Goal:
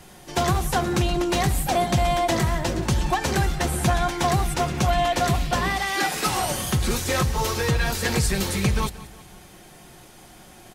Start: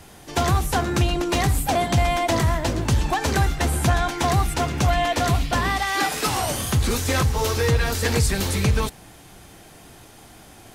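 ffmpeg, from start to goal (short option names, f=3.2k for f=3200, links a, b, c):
-af "aecho=1:1:5.5:0.4,aecho=1:1:179|358|537|716:0.126|0.0541|0.0233|0.01,volume=-1.5dB"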